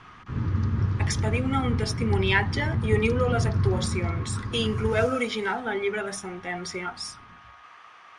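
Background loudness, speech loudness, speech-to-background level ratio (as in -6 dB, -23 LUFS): -28.5 LUFS, -28.0 LUFS, 0.5 dB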